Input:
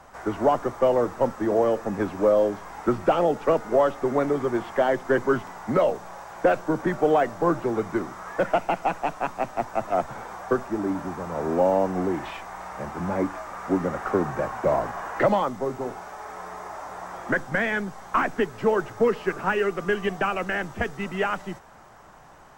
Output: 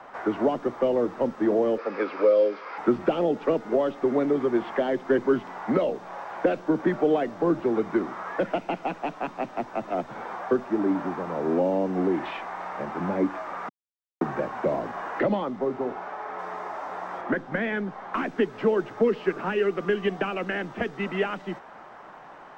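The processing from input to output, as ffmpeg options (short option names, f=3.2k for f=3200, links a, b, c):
-filter_complex "[0:a]asettb=1/sr,asplit=3[a][b][c];[a]atrim=end=1.784[d];[b]atrim=start=1.78:end=2.78,asetpts=PTS-STARTPTS,afade=t=in:d=0.004:c=qsin,afade=t=out:st=0.996:d=0.004:c=qsin,highpass=430,equalizer=f=500:t=q:w=4:g=9,equalizer=f=730:t=q:w=4:g=-5,equalizer=f=1.3k:t=q:w=4:g=9,equalizer=f=2.3k:t=q:w=4:g=10,equalizer=f=4.8k:t=q:w=4:g=9,lowpass=f=5.3k:w=0.5412,lowpass=f=5.3k:w=1.3066[e];[c]atrim=start=2.776[f];[d][e]acrossfade=d=0.004:c1=hsin:c2=qsin[g];[g][f]acrossfade=d=0.004:c1=qsin:c2=hsin,asettb=1/sr,asplit=3[h][i][j];[h]atrim=end=15.204[k];[i]atrim=start=15.2:end=16.39,asetpts=PTS-STARTPTS,afade=t=in:d=0.004:c=qsin,afade=t=out:st=1.186:d=0.004:c=qsin,highshelf=f=6k:g=-11[l];[j]atrim=start=16.386[m];[k][l]acrossfade=d=0.004:c1=hsin:c2=qsin[n];[n][m]acrossfade=d=0.004:c1=qsin:c2=hsin,asettb=1/sr,asplit=3[o][p][q];[o]atrim=end=17.214[r];[p]atrim=start=17.21:end=18.14,asetpts=PTS-STARTPTS,afade=t=in:d=0.004:c=qsin,afade=t=out:st=0.926:d=0.004:c=qsin,highshelf=f=4.8k:g=-11.5[s];[q]atrim=start=18.136[t];[r][s]acrossfade=d=0.004:c1=hsin:c2=qsin[u];[u][t]acrossfade=d=0.004:c1=qsin:c2=hsin,asplit=3[v][w][x];[v]atrim=end=13.69,asetpts=PTS-STARTPTS,afade=t=out:st=13.686:d=0.004:c=hsin[y];[w]atrim=start=13.69:end=14.21,asetpts=PTS-STARTPTS,volume=0[z];[x]atrim=start=14.21,asetpts=PTS-STARTPTS,afade=t=in:d=0.004:c=hsin[aa];[y][z][aa]concat=n=3:v=0:a=1,acrossover=split=190 3900:gain=0.126 1 0.0794[ab][ac][ad];[ab][ac][ad]amix=inputs=3:normalize=0,acrossover=split=400|3000[ae][af][ag];[af]acompressor=threshold=-37dB:ratio=4[ah];[ae][ah][ag]amix=inputs=3:normalize=0,volume=5dB"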